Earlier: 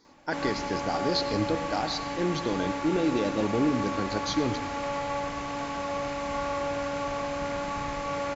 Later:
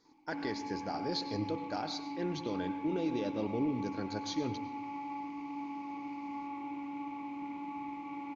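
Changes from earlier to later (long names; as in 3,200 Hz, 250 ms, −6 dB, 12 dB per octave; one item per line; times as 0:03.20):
speech −8.0 dB
background: add formant filter u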